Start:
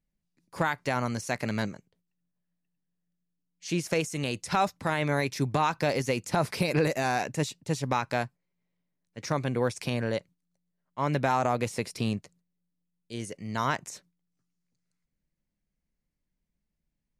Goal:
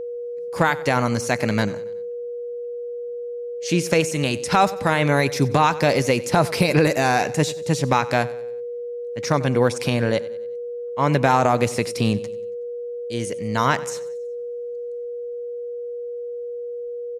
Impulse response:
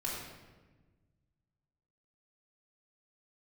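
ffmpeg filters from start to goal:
-af "aecho=1:1:93|186|279|372:0.119|0.057|0.0274|0.0131,aeval=exprs='val(0)+0.0158*sin(2*PI*480*n/s)':c=same,volume=8.5dB"

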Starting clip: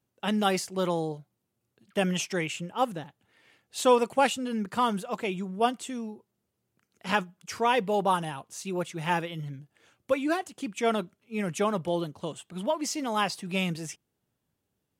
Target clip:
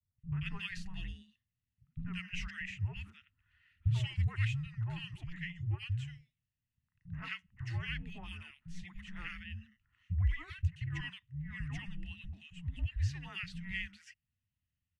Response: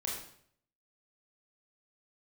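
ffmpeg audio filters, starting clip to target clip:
-filter_complex "[0:a]asplit=3[a][b][c];[a]bandpass=f=270:t=q:w=8,volume=0dB[d];[b]bandpass=f=2.29k:t=q:w=8,volume=-6dB[e];[c]bandpass=f=3.01k:t=q:w=8,volume=-9dB[f];[d][e][f]amix=inputs=3:normalize=0,afreqshift=-360,acrossover=split=210|1400[g][h][i];[h]adelay=90[j];[i]adelay=180[k];[g][j][k]amix=inputs=3:normalize=0,volume=5dB"

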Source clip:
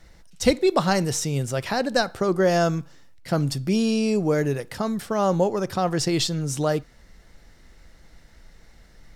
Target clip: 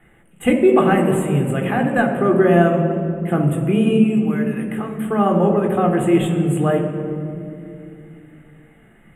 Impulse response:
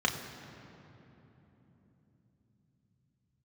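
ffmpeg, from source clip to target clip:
-filter_complex "[0:a]asettb=1/sr,asplit=3[a][b][c];[a]atrim=end=3.974[d];[b]atrim=start=3.97:end=5.02,asetpts=PTS-STARTPTS,afade=t=in:d=0.004:c=qsin,afade=t=out:st=1.046:d=0.004:c=qsin,acrossover=split=260|1100[e][f][g];[e]acompressor=threshold=-39dB:ratio=4[h];[f]acompressor=threshold=-37dB:ratio=4[i];[g]acompressor=threshold=-36dB:ratio=4[j];[h][i][j]amix=inputs=3:normalize=0[k];[c]atrim=start=5.016[l];[d][k]acrossfade=d=0.004:c1=hsin:c2=qsin[m];[m][l]acrossfade=d=0.004:c1=qsin:c2=hsin,asuperstop=centerf=5000:order=8:qfactor=1[n];[1:a]atrim=start_sample=2205,asetrate=70560,aresample=44100[o];[n][o]afir=irnorm=-1:irlink=0,volume=-1dB"

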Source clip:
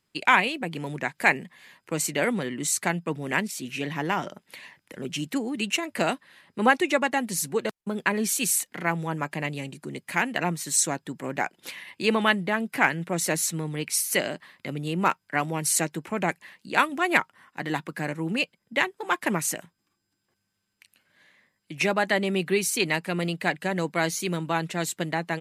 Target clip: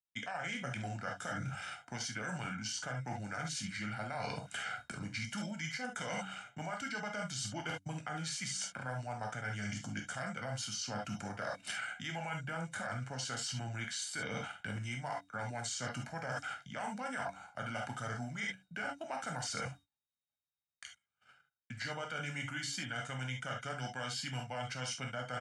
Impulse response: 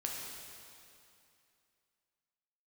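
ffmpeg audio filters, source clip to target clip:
-filter_complex "[0:a]equalizer=f=6.9k:t=o:w=2.6:g=4.5,alimiter=limit=-14.5dB:level=0:latency=1:release=66,aecho=1:1:1:0.68,bandreject=f=127.5:t=h:w=4,bandreject=f=255:t=h:w=4,bandreject=f=382.5:t=h:w=4,agate=range=-34dB:threshold=-52dB:ratio=16:detection=peak,acrossover=split=120|950|4500[a][b][c][d];[a]acompressor=threshold=-50dB:ratio=4[e];[b]acompressor=threshold=-33dB:ratio=4[f];[c]acompressor=threshold=-28dB:ratio=4[g];[d]acompressor=threshold=-33dB:ratio=4[h];[e][f][g][h]amix=inputs=4:normalize=0,asetrate=33038,aresample=44100,atempo=1.33484[i];[1:a]atrim=start_sample=2205,atrim=end_sample=3528[j];[i][j]afir=irnorm=-1:irlink=0,areverse,acompressor=threshold=-42dB:ratio=16,areverse,volume=5.5dB"

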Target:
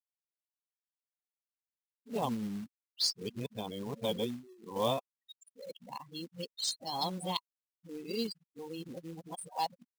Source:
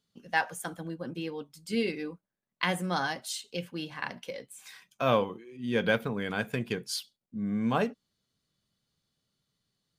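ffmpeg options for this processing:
-af "areverse,afftfilt=real='re*gte(hypot(re,im),0.02)':imag='im*gte(hypot(re,im),0.02)':win_size=1024:overlap=0.75,firequalizer=gain_entry='entry(190,0);entry(600,1);entry(980,6);entry(1500,-27);entry(2300,-9);entry(3800,13);entry(7900,10);entry(14000,-10)':delay=0.05:min_phase=1,acrusher=bits=4:mode=log:mix=0:aa=0.000001,volume=-7dB"

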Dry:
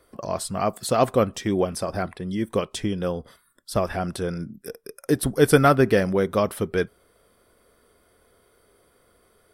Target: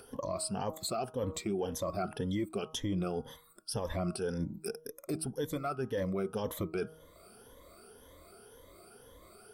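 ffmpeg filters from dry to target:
-af "afftfilt=real='re*pow(10,16/40*sin(2*PI*(1.1*log(max(b,1)*sr/1024/100)/log(2)-(1.9)*(pts-256)/sr)))':imag='im*pow(10,16/40*sin(2*PI*(1.1*log(max(b,1)*sr/1024/100)/log(2)-(1.9)*(pts-256)/sr)))':win_size=1024:overlap=0.75,equalizer=f=1.8k:w=3:g=-7,bandreject=f=158.3:t=h:w=4,bandreject=f=316.6:t=h:w=4,bandreject=f=474.9:t=h:w=4,bandreject=f=633.2:t=h:w=4,bandreject=f=791.5:t=h:w=4,bandreject=f=949.8:t=h:w=4,bandreject=f=1.1081k:t=h:w=4,bandreject=f=1.2664k:t=h:w=4,bandreject=f=1.4247k:t=h:w=4,areverse,acompressor=threshold=-25dB:ratio=8,areverse,alimiter=level_in=1.5dB:limit=-24dB:level=0:latency=1:release=231,volume=-1.5dB,acompressor=mode=upward:threshold=-50dB:ratio=2.5"

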